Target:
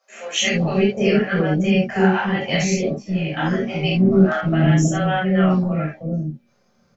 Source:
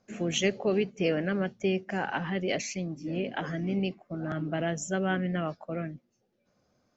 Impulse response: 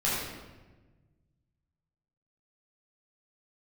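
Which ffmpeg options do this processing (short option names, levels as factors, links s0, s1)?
-filter_complex "[0:a]asettb=1/sr,asplit=3[s0][s1][s2];[s0]atrim=end=3.674[s3];[s1]atrim=start=3.67:end=4.54,asetpts=PTS-STARTPTS,afade=t=in:d=0.004:c=qsin,afade=t=out:st=0.866:d=0.004:c=qsin,acontrast=38[s4];[s2]atrim=start=4.536[s5];[s3][s4]acrossfade=d=0.004:c1=hsin:c2=qsin[s6];[s6][s5]acrossfade=d=0.004:c1=qsin:c2=hsin,acrossover=split=540[s7][s8];[s7]adelay=320[s9];[s9][s8]amix=inputs=2:normalize=0[s10];[1:a]atrim=start_sample=2205,atrim=end_sample=3969[s11];[s10][s11]afir=irnorm=-1:irlink=0,volume=1.33"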